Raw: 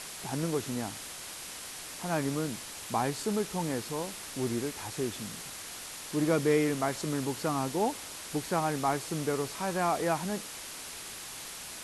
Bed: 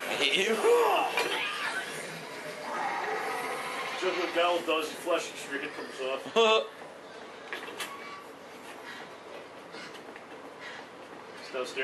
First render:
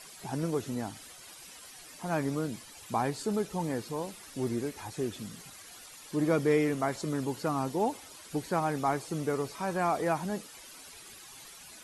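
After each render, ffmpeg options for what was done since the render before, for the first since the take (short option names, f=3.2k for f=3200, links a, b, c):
-af "afftdn=nr=12:nf=-43"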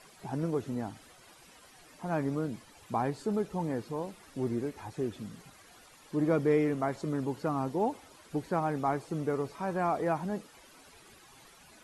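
-af "highshelf=f=2.6k:g=-11.5"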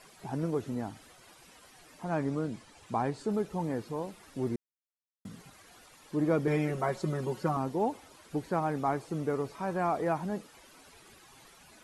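-filter_complex "[0:a]asettb=1/sr,asplit=3[a][b][c];[a]atrim=end=2.044[d];[b]atrim=start=2.04:end=3.29,asetpts=PTS-STARTPTS,afade=t=in:d=0.004:c=qsin,afade=t=out:st=1.246:d=0.004:c=qsin,lowpass=f=10k:w=0.5412,lowpass=f=10k:w=1.3066[e];[c]atrim=start=3.286[f];[d][e]acrossfade=d=0.004:c1=hsin:c2=qsin[g];[g][f]acrossfade=d=0.004:c1=qsin:c2=hsin,asettb=1/sr,asplit=3[h][i][j];[h]atrim=end=6.474[k];[i]atrim=start=6.47:end=7.57,asetpts=PTS-STARTPTS,afade=t=in:d=0.004:c=qsin,afade=t=out:st=1.096:d=0.004:c=qsin,aecho=1:1:5.4:0.92,atrim=end_sample=48510[l];[j]atrim=start=7.566[m];[k][l]acrossfade=d=0.004:c1=hsin:c2=qsin[n];[n][m]acrossfade=d=0.004:c1=qsin:c2=hsin,asplit=3[o][p][q];[o]atrim=end=4.56,asetpts=PTS-STARTPTS,afade=t=out:st=4.556:d=0.004:c=hsin[r];[p]atrim=start=4.56:end=5.25,asetpts=PTS-STARTPTS,volume=0[s];[q]atrim=start=5.25,asetpts=PTS-STARTPTS,afade=t=in:d=0.004:c=hsin[t];[r][s][t]concat=n=3:v=0:a=1"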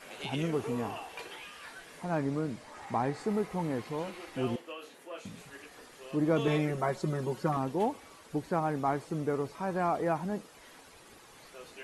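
-filter_complex "[1:a]volume=-15dB[a];[0:a][a]amix=inputs=2:normalize=0"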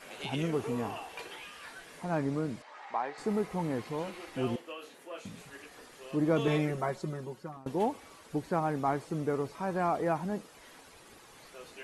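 -filter_complex "[0:a]asettb=1/sr,asplit=3[a][b][c];[a]atrim=end=2.624[d];[b]atrim=start=2.62:end=3.18,asetpts=PTS-STARTPTS,afade=t=in:d=0.004:c=qsin,afade=t=out:st=0.556:d=0.004:c=qsin,highpass=630,lowpass=4k[e];[c]atrim=start=3.176[f];[d][e]acrossfade=d=0.004:c1=hsin:c2=qsin[g];[g][f]acrossfade=d=0.004:c1=qsin:c2=hsin,asplit=2[h][i];[h]atrim=end=7.66,asetpts=PTS-STARTPTS,afade=t=out:st=6.64:d=1.02:silence=0.0668344[j];[i]atrim=start=7.66,asetpts=PTS-STARTPTS,afade=t=in:d=0.004:c=hsin:silence=0.0668344[k];[j][k]concat=n=2:v=0:a=1"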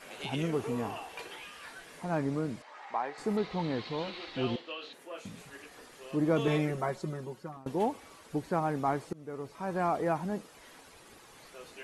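-filter_complex "[0:a]asettb=1/sr,asplit=3[a][b][c];[a]atrim=end=3.374[d];[b]atrim=start=3.37:end=4.93,asetpts=PTS-STARTPTS,afade=t=in:d=0.004:c=qsin,afade=t=out:st=1.556:d=0.004:c=qsin,lowpass=f=4k:t=q:w=4.2[e];[c]atrim=start=4.926[f];[d][e]acrossfade=d=0.004:c1=hsin:c2=qsin[g];[g][f]acrossfade=d=0.004:c1=qsin:c2=hsin,asplit=2[h][i];[h]atrim=end=9.13,asetpts=PTS-STARTPTS,afade=t=out:st=9.126:d=0.004:c=hsin:silence=0.0707946[j];[i]atrim=start=9.13,asetpts=PTS-STARTPTS,afade=t=in:d=0.67:silence=0.0707946[k];[j][k]concat=n=2:v=0:a=1"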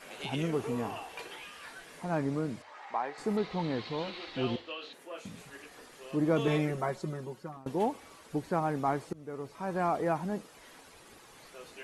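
-af "bandreject=f=50:t=h:w=6,bandreject=f=100:t=h:w=6"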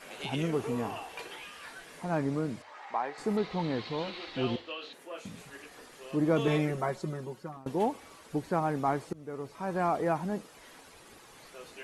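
-af "volume=1dB"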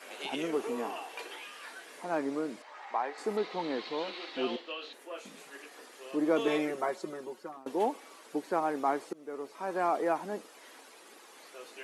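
-af "highpass=f=270:w=0.5412,highpass=f=270:w=1.3066"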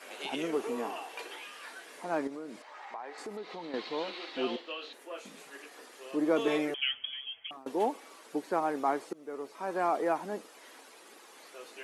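-filter_complex "[0:a]asettb=1/sr,asplit=3[a][b][c];[a]atrim=end=2.274[d];[b]atrim=start=2.27:end=3.74,asetpts=PTS-STARTPTS,afade=t=in:d=0.004:c=qsin,afade=t=out:st=1.466:d=0.004:c=qsin,acompressor=threshold=-40dB:ratio=3:attack=3.2:release=140:knee=1:detection=peak[e];[c]atrim=start=3.736[f];[d][e]acrossfade=d=0.004:c1=hsin:c2=qsin[g];[g][f]acrossfade=d=0.004:c1=qsin:c2=hsin,asettb=1/sr,asplit=3[h][i][j];[h]atrim=end=6.744[k];[i]atrim=start=6.74:end=7.51,asetpts=PTS-STARTPTS,afade=t=in:d=0.004:c=qsin,afade=t=out:st=0.766:d=0.004:c=qsin,lowpass=f=3.1k:t=q:w=0.5098,lowpass=f=3.1k:t=q:w=0.6013,lowpass=f=3.1k:t=q:w=0.9,lowpass=f=3.1k:t=q:w=2.563,afreqshift=-3600[l];[j]atrim=start=7.506[m];[k][l]acrossfade=d=0.004:c1=hsin:c2=qsin[n];[n][m]acrossfade=d=0.004:c1=qsin:c2=hsin"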